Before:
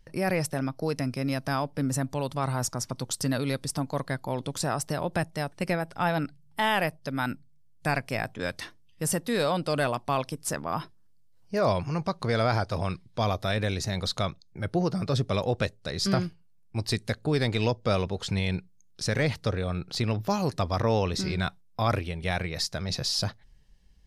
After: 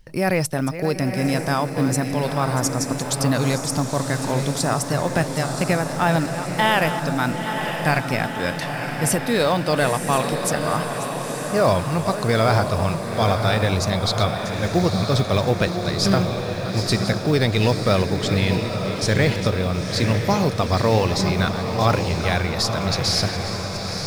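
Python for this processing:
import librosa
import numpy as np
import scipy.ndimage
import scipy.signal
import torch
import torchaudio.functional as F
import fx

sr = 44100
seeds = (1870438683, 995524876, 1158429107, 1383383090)

y = fx.reverse_delay(x, sr, ms=566, wet_db=-11.5)
y = fx.quant_float(y, sr, bits=4)
y = fx.echo_diffused(y, sr, ms=948, feedback_pct=62, wet_db=-6.5)
y = y * 10.0 ** (6.5 / 20.0)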